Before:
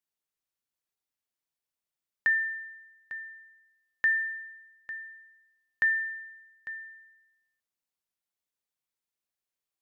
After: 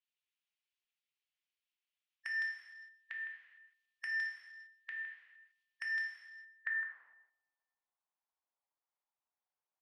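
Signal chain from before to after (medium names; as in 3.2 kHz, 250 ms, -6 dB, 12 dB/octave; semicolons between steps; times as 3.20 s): speakerphone echo 160 ms, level -6 dB; in parallel at 0 dB: level held to a coarse grid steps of 21 dB; on the sum: overload inside the chain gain 27 dB; harmonic-percussive split harmonic -12 dB; gated-style reverb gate 480 ms falling, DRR 1 dB; band-pass sweep 2.8 kHz -> 860 Hz, 6.36–7.18 s; trim +5.5 dB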